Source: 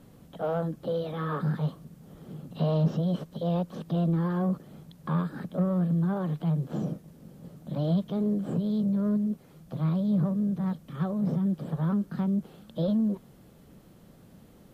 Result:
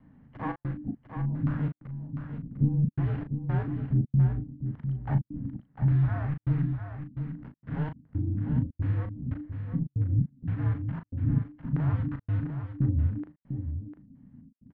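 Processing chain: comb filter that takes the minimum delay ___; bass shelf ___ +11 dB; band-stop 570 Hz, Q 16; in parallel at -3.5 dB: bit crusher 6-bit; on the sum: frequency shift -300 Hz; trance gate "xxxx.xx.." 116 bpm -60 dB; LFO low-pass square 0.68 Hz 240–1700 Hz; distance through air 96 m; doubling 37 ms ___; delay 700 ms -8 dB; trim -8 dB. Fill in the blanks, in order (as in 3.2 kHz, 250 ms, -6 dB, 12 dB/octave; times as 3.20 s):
0.89 ms, 130 Hz, -8 dB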